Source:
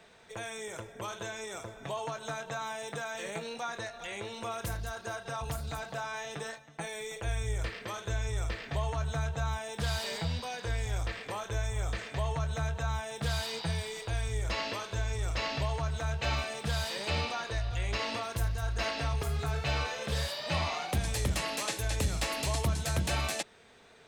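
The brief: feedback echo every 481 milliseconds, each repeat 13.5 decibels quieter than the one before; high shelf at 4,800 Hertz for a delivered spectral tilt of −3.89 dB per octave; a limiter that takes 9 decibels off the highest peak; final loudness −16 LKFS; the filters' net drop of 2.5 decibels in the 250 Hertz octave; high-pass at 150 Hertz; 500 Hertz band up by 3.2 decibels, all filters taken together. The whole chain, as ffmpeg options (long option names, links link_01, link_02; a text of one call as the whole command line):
ffmpeg -i in.wav -af "highpass=150,equalizer=frequency=250:width_type=o:gain=-3,equalizer=frequency=500:width_type=o:gain=5,highshelf=frequency=4800:gain=-7.5,alimiter=level_in=4dB:limit=-24dB:level=0:latency=1,volume=-4dB,aecho=1:1:481|962:0.211|0.0444,volume=22dB" out.wav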